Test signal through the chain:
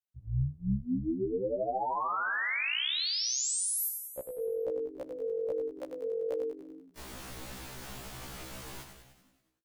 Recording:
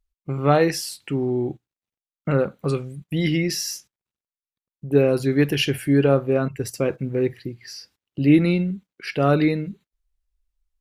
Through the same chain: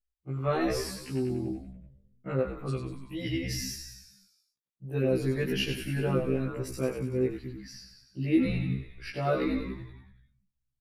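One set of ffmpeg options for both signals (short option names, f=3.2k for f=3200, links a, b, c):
-filter_complex "[0:a]asplit=9[a][b][c][d][e][f][g][h][i];[b]adelay=95,afreqshift=-46,volume=-6.5dB[j];[c]adelay=190,afreqshift=-92,volume=-10.9dB[k];[d]adelay=285,afreqshift=-138,volume=-15.4dB[l];[e]adelay=380,afreqshift=-184,volume=-19.8dB[m];[f]adelay=475,afreqshift=-230,volume=-24.2dB[n];[g]adelay=570,afreqshift=-276,volume=-28.7dB[o];[h]adelay=665,afreqshift=-322,volume=-33.1dB[p];[i]adelay=760,afreqshift=-368,volume=-37.6dB[q];[a][j][k][l][m][n][o][p][q]amix=inputs=9:normalize=0,afftfilt=real='re*1.73*eq(mod(b,3),0)':imag='im*1.73*eq(mod(b,3),0)':win_size=2048:overlap=0.75,volume=-7.5dB"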